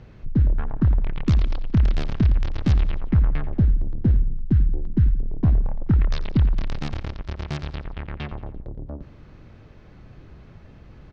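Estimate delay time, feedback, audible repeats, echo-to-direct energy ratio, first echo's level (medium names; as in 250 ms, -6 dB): 88 ms, 48%, 3, -15.5 dB, -16.5 dB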